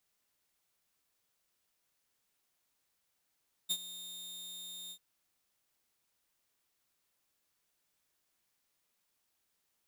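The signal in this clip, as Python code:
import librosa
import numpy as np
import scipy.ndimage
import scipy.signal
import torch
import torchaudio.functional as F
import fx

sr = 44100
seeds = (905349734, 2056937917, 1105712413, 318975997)

y = fx.adsr_tone(sr, wave='saw', hz=3660.0, attack_ms=21.0, decay_ms=58.0, sustain_db=-15.5, held_s=1.22, release_ms=72.0, level_db=-26.0)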